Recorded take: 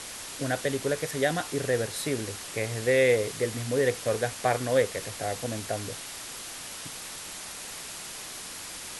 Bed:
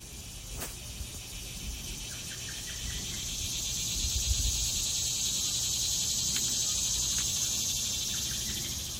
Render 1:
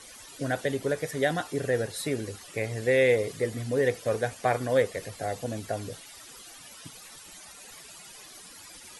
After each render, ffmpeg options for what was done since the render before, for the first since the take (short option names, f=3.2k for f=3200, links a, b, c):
-af "afftdn=nr=14:nf=-40"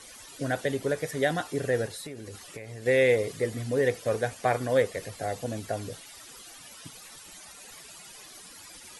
-filter_complex "[0:a]asettb=1/sr,asplit=3[a][b][c];[a]atrim=end=1.864[d];[b]atrim=start=1.86:end=2.86,asetpts=PTS-STARTPTS,afade=t=in:d=0.004:c=qsin,afade=t=out:st=0.996:d=0.004:c=qsin,acompressor=threshold=-36dB:ratio=8:attack=3.2:release=140:knee=1:detection=peak[e];[c]atrim=start=2.856[f];[d][e]acrossfade=d=0.004:c1=hsin:c2=qsin[g];[g][f]acrossfade=d=0.004:c1=qsin:c2=hsin"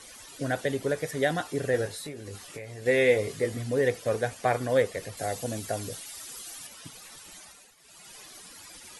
-filter_complex "[0:a]asettb=1/sr,asplit=3[a][b][c];[a]atrim=end=1.724[d];[b]atrim=start=1.72:end=3.57,asetpts=PTS-STARTPTS,afade=t=in:d=0.004:c=qsin,afade=t=out:st=1.846:d=0.004:c=qsin,asplit=2[e][f];[f]adelay=20,volume=-7dB[g];[e][g]amix=inputs=2:normalize=0,atrim=end_sample=81585[h];[c]atrim=start=3.566[i];[d][h]acrossfade=d=0.004:c1=hsin:c2=qsin[j];[j][i]acrossfade=d=0.004:c1=qsin:c2=hsin,asettb=1/sr,asplit=3[k][l][m];[k]atrim=end=5.174[n];[l]atrim=start=5.17:end=6.67,asetpts=PTS-STARTPTS,afade=t=in:d=0.004:c=qsin,afade=t=out:st=1.496:d=0.004:c=qsin,highshelf=f=5.1k:g=9[o];[m]atrim=start=6.666[p];[n][o]acrossfade=d=0.004:c1=hsin:c2=qsin[q];[q][p]acrossfade=d=0.004:c1=qsin:c2=hsin,asplit=3[r][s][t];[r]atrim=end=7.75,asetpts=PTS-STARTPTS,afade=t=out:st=7.38:d=0.37:silence=0.177828[u];[s]atrim=start=7.75:end=7.77,asetpts=PTS-STARTPTS,volume=-15dB[v];[t]atrim=start=7.77,asetpts=PTS-STARTPTS,afade=t=in:d=0.37:silence=0.177828[w];[u][v][w]concat=n=3:v=0:a=1"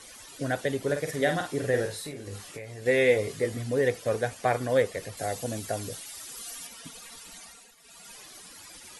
-filter_complex "[0:a]asettb=1/sr,asplit=3[a][b][c];[a]atrim=end=0.824[d];[b]atrim=start=0.82:end=2.5,asetpts=PTS-STARTPTS,afade=t=in:d=0.004:c=qsin,afade=t=out:st=1.676:d=0.004:c=qsin,asplit=2[e][f];[f]adelay=49,volume=-6.5dB[g];[e][g]amix=inputs=2:normalize=0,atrim=end_sample=74088[h];[c]atrim=start=2.496[i];[d][h]acrossfade=d=0.004:c1=hsin:c2=qsin[j];[j][i]acrossfade=d=0.004:c1=qsin:c2=hsin,asettb=1/sr,asplit=3[k][l][m];[k]atrim=end=6.374[n];[l]atrim=start=6.37:end=8.15,asetpts=PTS-STARTPTS,afade=t=in:d=0.004:c=qsin,afade=t=out:st=1.776:d=0.004:c=qsin,aecho=1:1:4.3:0.65,atrim=end_sample=78498[o];[m]atrim=start=8.146[p];[n][o]acrossfade=d=0.004:c1=hsin:c2=qsin[q];[q][p]acrossfade=d=0.004:c1=qsin:c2=hsin"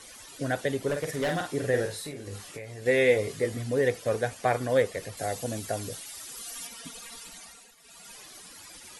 -filter_complex "[0:a]asettb=1/sr,asplit=3[a][b][c];[a]atrim=end=0.884[d];[b]atrim=start=0.88:end=1.54,asetpts=PTS-STARTPTS,afade=t=in:d=0.004:c=qsin,afade=t=out:st=0.656:d=0.004:c=qsin,asoftclip=type=hard:threshold=-24dB[e];[c]atrim=start=1.536[f];[d][e]acrossfade=d=0.004:c1=hsin:c2=qsin[g];[g][f]acrossfade=d=0.004:c1=qsin:c2=hsin,asettb=1/sr,asplit=3[h][i][j];[h]atrim=end=6.554[k];[i]atrim=start=6.55:end=7.29,asetpts=PTS-STARTPTS,afade=t=in:d=0.004:c=qsin,afade=t=out:st=0.736:d=0.004:c=qsin,aecho=1:1:4.3:0.42,atrim=end_sample=32634[l];[j]atrim=start=7.286[m];[k][l]acrossfade=d=0.004:c1=hsin:c2=qsin[n];[n][m]acrossfade=d=0.004:c1=qsin:c2=hsin"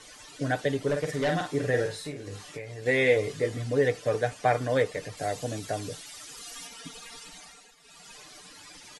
-af "lowpass=7.4k,aecho=1:1:6.7:0.44"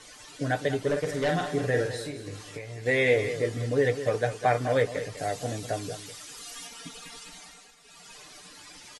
-filter_complex "[0:a]asplit=2[a][b];[b]adelay=17,volume=-13dB[c];[a][c]amix=inputs=2:normalize=0,aecho=1:1:201:0.266"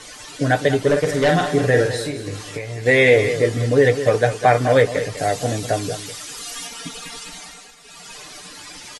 -af "volume=10dB,alimiter=limit=-3dB:level=0:latency=1"